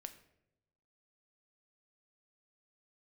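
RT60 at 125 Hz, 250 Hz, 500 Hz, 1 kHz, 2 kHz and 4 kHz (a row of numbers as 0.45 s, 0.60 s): 1.3 s, 1.1 s, 1.0 s, 0.70 s, 0.65 s, 0.50 s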